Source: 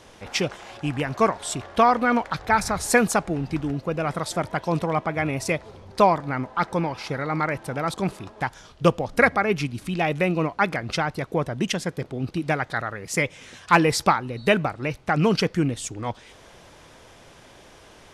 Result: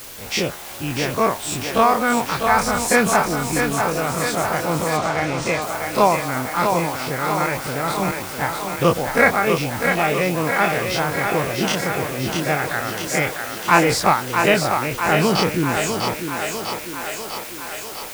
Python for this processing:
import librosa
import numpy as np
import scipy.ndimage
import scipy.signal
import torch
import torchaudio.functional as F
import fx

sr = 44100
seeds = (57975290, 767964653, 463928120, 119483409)

p1 = fx.spec_dilate(x, sr, span_ms=60)
p2 = fx.quant_dither(p1, sr, seeds[0], bits=6, dither='triangular')
p3 = p2 + fx.echo_thinned(p2, sr, ms=649, feedback_pct=70, hz=250.0, wet_db=-5.0, dry=0)
p4 = fx.resample_linear(p3, sr, factor=3, at=(4.97, 5.62))
y = p4 * librosa.db_to_amplitude(-1.5)